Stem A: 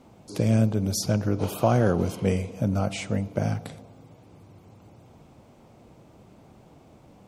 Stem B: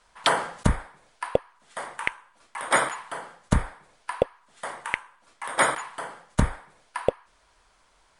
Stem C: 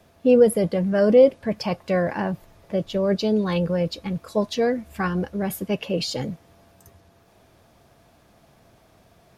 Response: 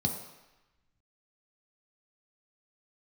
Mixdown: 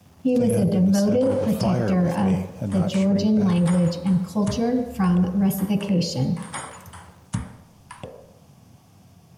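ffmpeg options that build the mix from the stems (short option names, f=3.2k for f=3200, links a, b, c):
-filter_complex "[0:a]aeval=exprs='val(0)*gte(abs(val(0)),0.00376)':c=same,volume=-3dB[a];[1:a]adelay=950,volume=-10.5dB,asplit=2[b][c];[c]volume=-10dB[d];[2:a]volume=-5dB,asplit=2[e][f];[f]volume=-4.5dB[g];[b][e]amix=inputs=2:normalize=0,tiltshelf=f=1.2k:g=-9.5,alimiter=limit=-20dB:level=0:latency=1:release=316,volume=0dB[h];[3:a]atrim=start_sample=2205[i];[d][g]amix=inputs=2:normalize=0[j];[j][i]afir=irnorm=-1:irlink=0[k];[a][h][k]amix=inputs=3:normalize=0,alimiter=limit=-13dB:level=0:latency=1:release=13"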